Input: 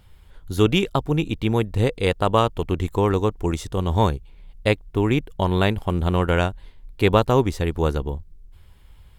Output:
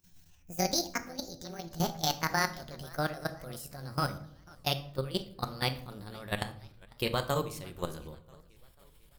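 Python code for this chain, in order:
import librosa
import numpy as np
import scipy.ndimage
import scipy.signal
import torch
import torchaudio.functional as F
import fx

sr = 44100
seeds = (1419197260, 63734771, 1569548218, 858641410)

y = fx.pitch_glide(x, sr, semitones=10.5, runs='ending unshifted')
y = librosa.effects.preemphasis(y, coef=0.8, zi=[0.0])
y = fx.level_steps(y, sr, step_db=16)
y = fx.room_shoebox(y, sr, seeds[0], volume_m3=970.0, walls='furnished', distance_m=0.94)
y = fx.echo_warbled(y, sr, ms=494, feedback_pct=53, rate_hz=2.8, cents=205, wet_db=-24.0)
y = y * 10.0 ** (3.5 / 20.0)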